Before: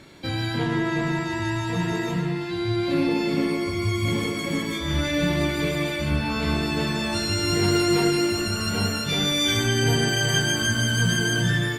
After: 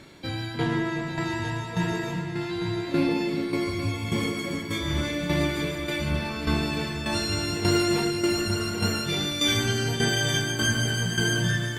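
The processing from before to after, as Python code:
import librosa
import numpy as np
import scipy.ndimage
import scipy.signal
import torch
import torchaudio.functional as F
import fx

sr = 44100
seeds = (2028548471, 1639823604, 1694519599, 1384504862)

y = fx.tremolo_shape(x, sr, shape='saw_down', hz=1.7, depth_pct=65)
y = y + 10.0 ** (-10.0 / 20.0) * np.pad(y, (int(849 * sr / 1000.0), 0))[:len(y)]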